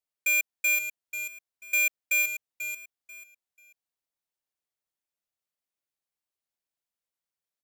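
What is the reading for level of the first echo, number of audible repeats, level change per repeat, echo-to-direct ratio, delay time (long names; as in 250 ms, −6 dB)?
−10.0 dB, 3, −12.0 dB, −9.5 dB, 489 ms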